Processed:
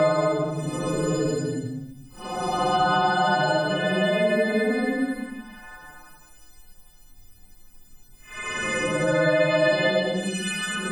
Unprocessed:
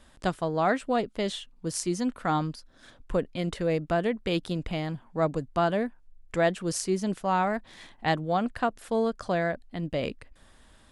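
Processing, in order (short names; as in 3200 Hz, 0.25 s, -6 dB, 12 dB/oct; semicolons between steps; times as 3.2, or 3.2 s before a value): frequency quantiser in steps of 3 st; Paulstretch 7.9×, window 0.10 s, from 5.23; three-band squash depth 70%; gain +2 dB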